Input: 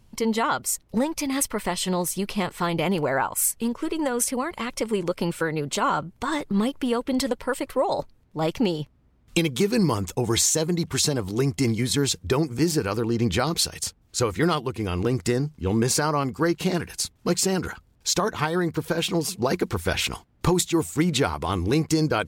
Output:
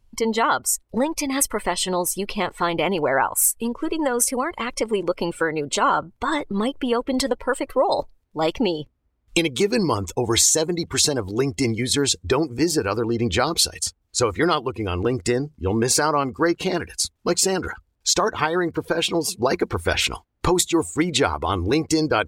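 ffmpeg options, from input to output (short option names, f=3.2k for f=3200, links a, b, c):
-filter_complex "[0:a]asettb=1/sr,asplit=3[a][b][c];[a]atrim=end=7.924[d];[b]atrim=start=7.92:end=8.52,asetpts=PTS-STARTPTS,afade=t=in:d=0.004:c=qsin,afade=t=out:st=0.596:d=0.004:c=qsin,highshelf=f=3.7k:g=6[e];[c]atrim=start=8.516[f];[d][e]acrossfade=d=0.004:c1=hsin:c2=qsin[g];[g][f]acrossfade=d=0.004:c1=qsin:c2=hsin,afftdn=nr=14:nf=-39,equalizer=f=160:w=1.3:g=-9.5,volume=4.5dB"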